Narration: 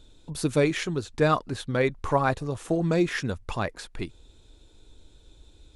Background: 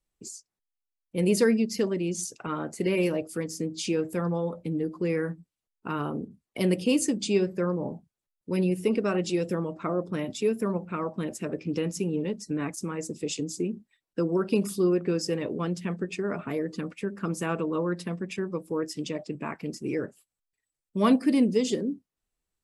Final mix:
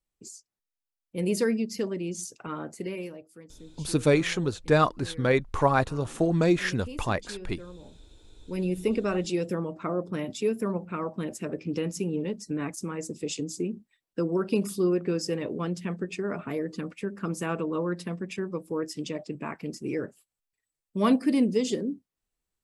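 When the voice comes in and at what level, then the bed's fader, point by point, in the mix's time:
3.50 s, +1.0 dB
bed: 2.7 s -3.5 dB
3.26 s -17.5 dB
7.93 s -17.5 dB
8.77 s -1 dB

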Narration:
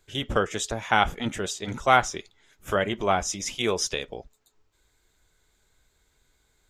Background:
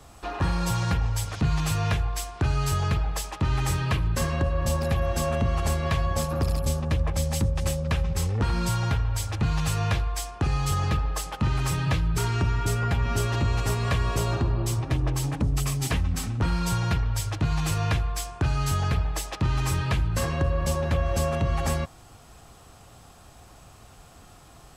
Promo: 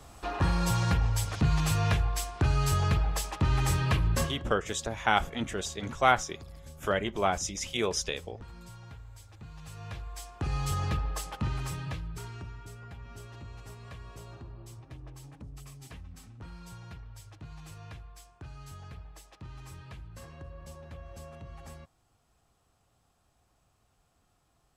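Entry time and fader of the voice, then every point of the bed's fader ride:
4.15 s, -4.0 dB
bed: 4.2 s -1.5 dB
4.47 s -22.5 dB
9.52 s -22.5 dB
10.57 s -5.5 dB
11.33 s -5.5 dB
12.7 s -21 dB

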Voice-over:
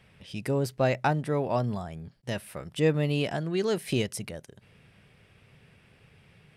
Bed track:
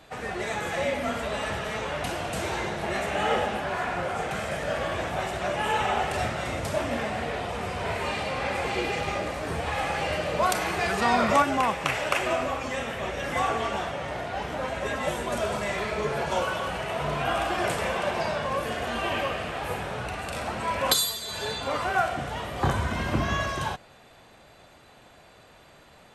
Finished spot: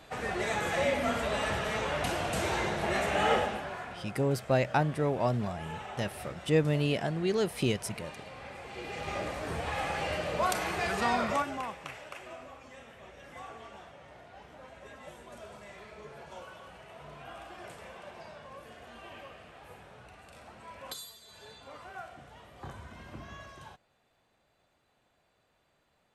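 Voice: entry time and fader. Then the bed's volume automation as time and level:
3.70 s, -1.5 dB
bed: 3.32 s -1 dB
4.04 s -16.5 dB
8.67 s -16.5 dB
9.19 s -5 dB
11.05 s -5 dB
12.13 s -19.5 dB

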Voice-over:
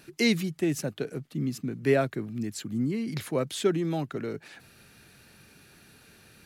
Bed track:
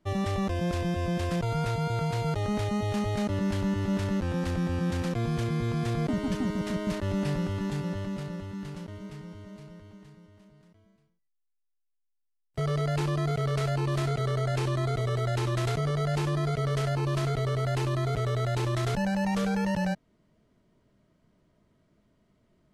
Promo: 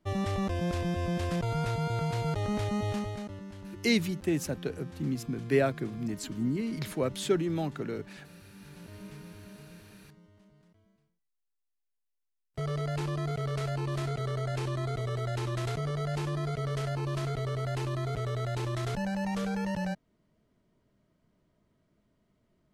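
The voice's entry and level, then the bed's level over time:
3.65 s, -2.0 dB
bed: 2.9 s -2 dB
3.46 s -16.5 dB
8.49 s -16.5 dB
9 s -4.5 dB

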